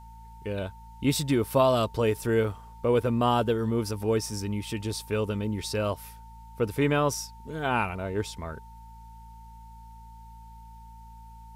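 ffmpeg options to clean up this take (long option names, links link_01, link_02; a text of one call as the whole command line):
ffmpeg -i in.wav -af "bandreject=frequency=56.2:width_type=h:width=4,bandreject=frequency=112.4:width_type=h:width=4,bandreject=frequency=168.6:width_type=h:width=4,bandreject=frequency=224.8:width_type=h:width=4,bandreject=frequency=900:width=30,agate=range=-21dB:threshold=-39dB" out.wav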